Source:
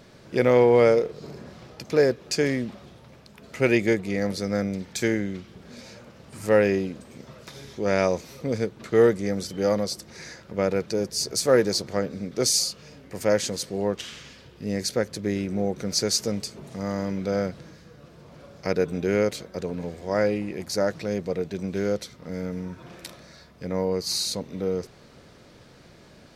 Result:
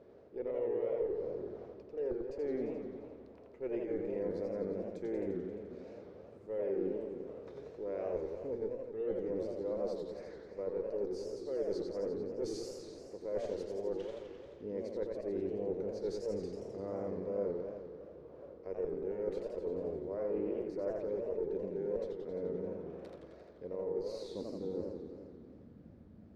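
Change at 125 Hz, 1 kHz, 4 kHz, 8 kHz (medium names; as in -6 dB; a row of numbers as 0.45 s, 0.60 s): -18.5 dB, -18.5 dB, -28.0 dB, under -30 dB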